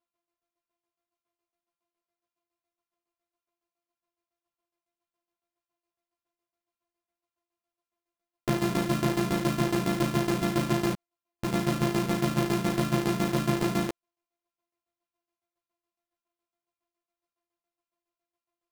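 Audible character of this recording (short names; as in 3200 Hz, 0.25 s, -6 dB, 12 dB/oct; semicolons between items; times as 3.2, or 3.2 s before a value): a buzz of ramps at a fixed pitch in blocks of 128 samples; tremolo saw down 7.2 Hz, depth 80%; a shimmering, thickened sound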